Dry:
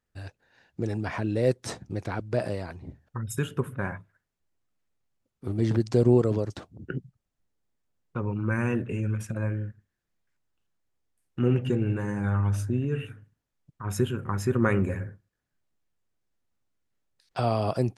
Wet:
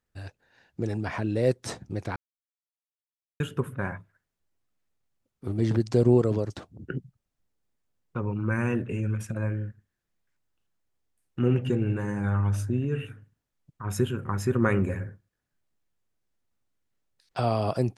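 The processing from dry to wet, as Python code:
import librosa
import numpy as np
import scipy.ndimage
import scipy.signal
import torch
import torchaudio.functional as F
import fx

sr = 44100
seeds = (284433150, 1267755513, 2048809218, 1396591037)

y = fx.edit(x, sr, fx.silence(start_s=2.16, length_s=1.24), tone=tone)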